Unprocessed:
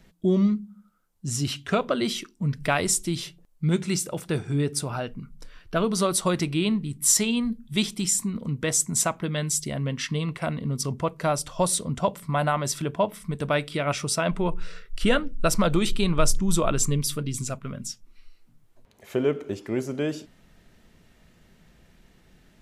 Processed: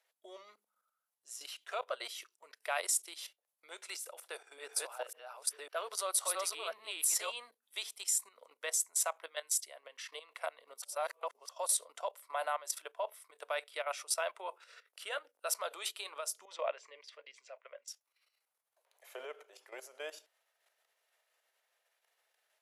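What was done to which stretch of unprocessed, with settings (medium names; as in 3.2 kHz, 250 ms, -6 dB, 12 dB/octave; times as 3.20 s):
4.03–7.32 s: chunks repeated in reverse 550 ms, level 0 dB
10.82–11.49 s: reverse
16.45–17.88 s: cabinet simulation 340–4100 Hz, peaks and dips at 360 Hz -4 dB, 550 Hz +7 dB, 1.3 kHz -7 dB, 2 kHz +7 dB, 3.7 kHz -7 dB
whole clip: level held to a coarse grid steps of 13 dB; steep high-pass 540 Hz 36 dB/octave; peaking EQ 11 kHz +9 dB 0.37 oct; trim -6.5 dB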